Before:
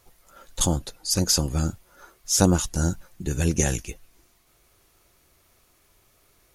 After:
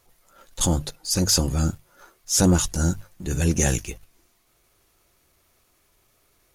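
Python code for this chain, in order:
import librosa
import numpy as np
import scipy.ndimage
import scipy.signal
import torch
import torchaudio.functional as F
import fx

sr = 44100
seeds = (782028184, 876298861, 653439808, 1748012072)

y = fx.hum_notches(x, sr, base_hz=50, count=3)
y = fx.transient(y, sr, attack_db=-6, sustain_db=0)
y = fx.leveller(y, sr, passes=1)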